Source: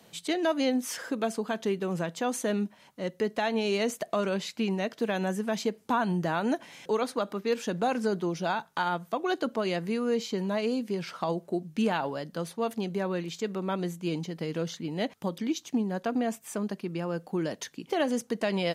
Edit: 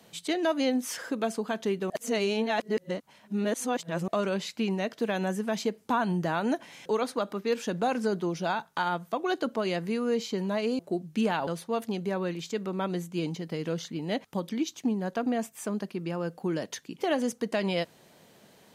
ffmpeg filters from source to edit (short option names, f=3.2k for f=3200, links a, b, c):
-filter_complex "[0:a]asplit=5[a][b][c][d][e];[a]atrim=end=1.902[f];[b]atrim=start=1.898:end=4.082,asetpts=PTS-STARTPTS,areverse[g];[c]atrim=start=4.078:end=10.792[h];[d]atrim=start=11.398:end=12.082[i];[e]atrim=start=12.358[j];[f][g]acrossfade=d=0.004:c1=hsin:c2=hsin[k];[k][h]acrossfade=d=0.004:c1=hsin:c2=hsin[l];[l][i]acrossfade=d=0.004:c1=hsin:c2=hsin[m];[m][j]acrossfade=d=0.004:c1=hsin:c2=hsin"